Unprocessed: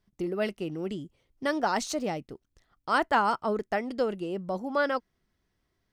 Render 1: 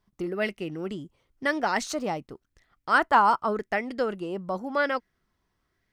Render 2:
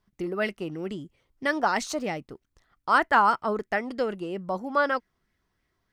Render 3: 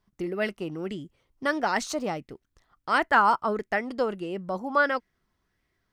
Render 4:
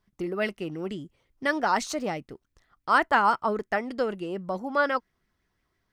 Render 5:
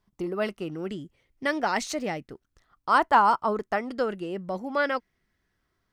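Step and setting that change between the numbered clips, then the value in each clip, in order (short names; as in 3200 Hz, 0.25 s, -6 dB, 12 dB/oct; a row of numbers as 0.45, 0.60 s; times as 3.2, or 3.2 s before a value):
LFO bell, rate: 0.92, 3.1, 1.5, 5.8, 0.31 Hz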